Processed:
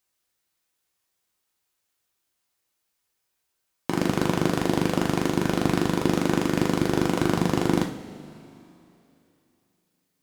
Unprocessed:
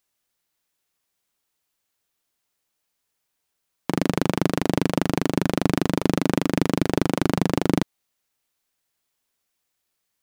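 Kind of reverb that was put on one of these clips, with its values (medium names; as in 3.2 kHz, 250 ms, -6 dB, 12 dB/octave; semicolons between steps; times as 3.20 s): two-slope reverb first 0.42 s, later 3 s, from -18 dB, DRR 1 dB; trim -2.5 dB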